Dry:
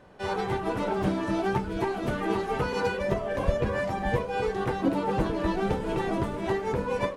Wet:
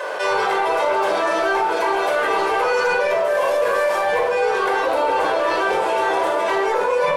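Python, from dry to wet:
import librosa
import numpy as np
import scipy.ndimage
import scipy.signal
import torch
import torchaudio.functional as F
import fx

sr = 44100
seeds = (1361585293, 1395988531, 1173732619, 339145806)

y = fx.cvsd(x, sr, bps=64000, at=(3.24, 4.01))
y = scipy.signal.sosfilt(scipy.signal.butter(4, 520.0, 'highpass', fs=sr, output='sos'), y)
y = 10.0 ** (-22.0 / 20.0) * np.tanh(y / 10.0 ** (-22.0 / 20.0))
y = fx.room_shoebox(y, sr, seeds[0], volume_m3=2300.0, walls='furnished', distance_m=5.2)
y = fx.env_flatten(y, sr, amount_pct=70)
y = y * 10.0 ** (4.5 / 20.0)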